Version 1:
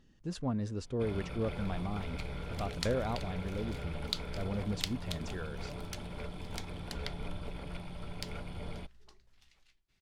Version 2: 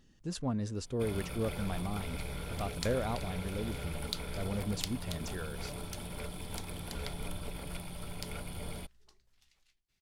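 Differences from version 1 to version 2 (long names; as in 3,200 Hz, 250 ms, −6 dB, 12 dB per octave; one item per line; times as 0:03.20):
first sound: remove high-frequency loss of the air 56 metres
second sound −6.0 dB
master: add high-shelf EQ 6,000 Hz +10.5 dB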